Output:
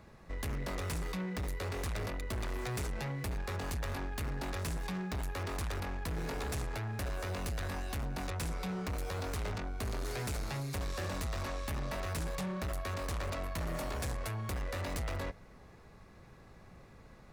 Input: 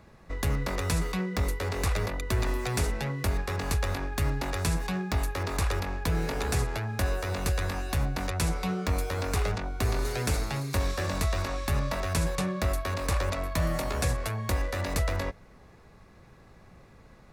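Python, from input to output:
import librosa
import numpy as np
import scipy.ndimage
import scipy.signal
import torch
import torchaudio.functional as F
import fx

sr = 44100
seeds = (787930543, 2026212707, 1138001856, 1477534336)

y = 10.0 ** (-31.5 / 20.0) * np.tanh(x / 10.0 ** (-31.5 / 20.0))
y = F.gain(torch.from_numpy(y), -2.0).numpy()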